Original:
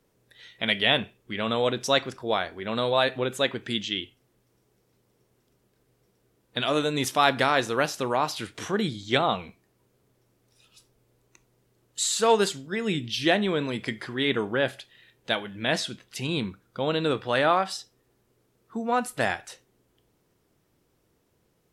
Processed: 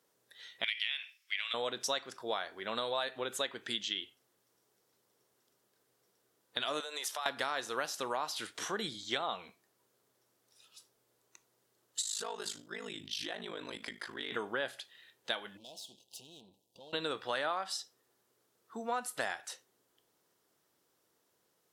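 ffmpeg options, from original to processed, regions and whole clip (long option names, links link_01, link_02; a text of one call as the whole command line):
ffmpeg -i in.wav -filter_complex "[0:a]asettb=1/sr,asplit=3[link_01][link_02][link_03];[link_01]atrim=end=0.644[link_04];[link_02]atrim=start=0.64:end=1.54,asetpts=PTS-STARTPTS,afade=type=in:duration=0.004:curve=qsin,afade=type=out:start_time=0.896:duration=0.004:curve=qsin,equalizer=frequency=5300:width_type=o:width=0.25:gain=10.5,acompressor=threshold=-24dB:ratio=4:attack=3.2:release=140:knee=1:detection=peak,highpass=frequency=2300:width_type=q:width=3.9[link_05];[link_03]atrim=start=1.536[link_06];[link_04][link_05]acrossfade=duration=0.004:curve1=hsin:curve2=qsin[link_07];[link_07][link_06]acrossfade=duration=0.004:curve1=qsin:curve2=hsin,asettb=1/sr,asplit=3[link_08][link_09][link_10];[link_08]atrim=end=6.804[link_11];[link_09]atrim=start=6.8:end=7.26,asetpts=PTS-STARTPTS,afade=type=in:duration=0.004:curve=qsin,afade=type=out:start_time=0.456:duration=0.004:curve=qsin,highpass=frequency=460:width=0.5412,highpass=frequency=460:width=1.3066,acompressor=threshold=-31dB:ratio=8:attack=3.2:release=140:knee=1:detection=peak[link_12];[link_10]atrim=start=7.256[link_13];[link_11][link_12]acrossfade=duration=0.004:curve1=hsin:curve2=qsin[link_14];[link_14][link_13]acrossfade=duration=0.004:curve1=qsin:curve2=hsin,asettb=1/sr,asplit=3[link_15][link_16][link_17];[link_15]atrim=end=12.014[link_18];[link_16]atrim=start=12.01:end=14.32,asetpts=PTS-STARTPTS,afade=type=in:duration=0.004:curve=qsin,afade=type=out:start_time=2.306:duration=0.004:curve=qsin,bandreject=frequency=50:width_type=h:width=6,bandreject=frequency=100:width_type=h:width=6,bandreject=frequency=150:width_type=h:width=6,bandreject=frequency=200:width_type=h:width=6,bandreject=frequency=250:width_type=h:width=6,aeval=exprs='val(0)*sin(2*PI*26*n/s)':channel_layout=same,acompressor=threshold=-30dB:ratio=10:attack=3.2:release=140:knee=1:detection=peak[link_19];[link_17]atrim=start=14.316[link_20];[link_18][link_19]acrossfade=duration=0.004:curve1=hsin:curve2=qsin[link_21];[link_21][link_20]acrossfade=duration=0.004:curve1=qsin:curve2=hsin,asettb=1/sr,asplit=3[link_22][link_23][link_24];[link_22]atrim=end=15.574[link_25];[link_23]atrim=start=15.57:end=16.93,asetpts=PTS-STARTPTS,afade=type=in:duration=0.004:curve=qsin,afade=type=out:start_time=1.356:duration=0.004:curve=qsin,aeval=exprs='if(lt(val(0),0),0.251*val(0),val(0))':channel_layout=same,asuperstop=centerf=1600:order=12:qfactor=0.87,acompressor=threshold=-43dB:ratio=5:attack=3.2:release=140:knee=1:detection=peak[link_26];[link_24]atrim=start=16.926[link_27];[link_25][link_26]acrossfade=duration=0.004:curve1=hsin:curve2=qsin[link_28];[link_28][link_27]acrossfade=duration=0.004:curve1=qsin:curve2=hsin,highpass=frequency=1000:poles=1,equalizer=frequency=2400:width=2.3:gain=-5.5,acompressor=threshold=-32dB:ratio=4" out.wav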